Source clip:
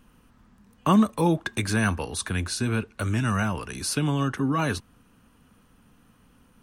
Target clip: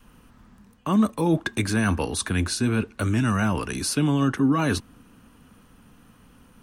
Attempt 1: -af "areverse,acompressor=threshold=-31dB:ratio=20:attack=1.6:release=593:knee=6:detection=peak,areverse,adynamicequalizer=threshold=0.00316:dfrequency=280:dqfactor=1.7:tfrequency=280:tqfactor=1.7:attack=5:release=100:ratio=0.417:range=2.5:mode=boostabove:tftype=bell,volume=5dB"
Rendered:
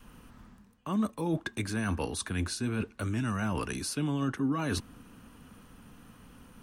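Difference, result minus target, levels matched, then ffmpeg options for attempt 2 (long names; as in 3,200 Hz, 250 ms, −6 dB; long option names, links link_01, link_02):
downward compressor: peak gain reduction +9.5 dB
-af "areverse,acompressor=threshold=-21dB:ratio=20:attack=1.6:release=593:knee=6:detection=peak,areverse,adynamicequalizer=threshold=0.00316:dfrequency=280:dqfactor=1.7:tfrequency=280:tqfactor=1.7:attack=5:release=100:ratio=0.417:range=2.5:mode=boostabove:tftype=bell,volume=5dB"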